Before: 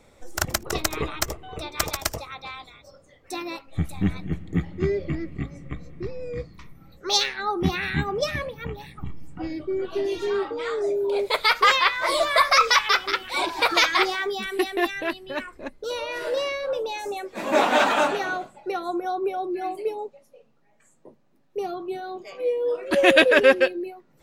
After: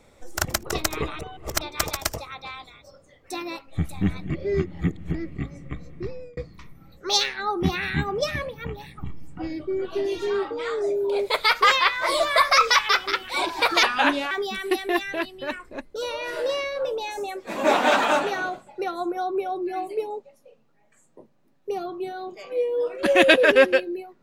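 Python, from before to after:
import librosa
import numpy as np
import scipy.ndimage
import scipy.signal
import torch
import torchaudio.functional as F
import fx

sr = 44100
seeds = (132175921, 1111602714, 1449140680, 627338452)

y = fx.edit(x, sr, fx.reverse_span(start_s=1.19, length_s=0.42),
    fx.reverse_span(start_s=4.3, length_s=0.84),
    fx.fade_out_span(start_s=6.11, length_s=0.26),
    fx.speed_span(start_s=13.83, length_s=0.36, speed=0.75), tone=tone)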